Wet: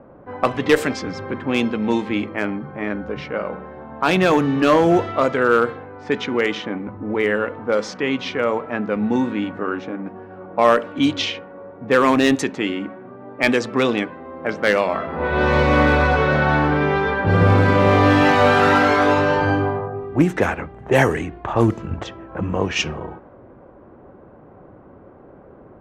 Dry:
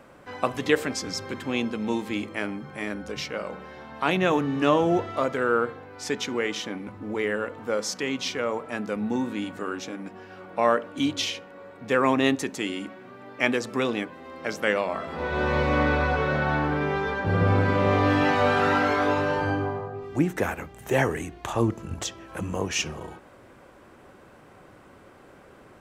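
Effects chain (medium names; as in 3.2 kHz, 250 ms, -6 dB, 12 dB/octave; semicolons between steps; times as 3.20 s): level-controlled noise filter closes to 750 Hz, open at -18 dBFS; one-sided clip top -15.5 dBFS; trim +7.5 dB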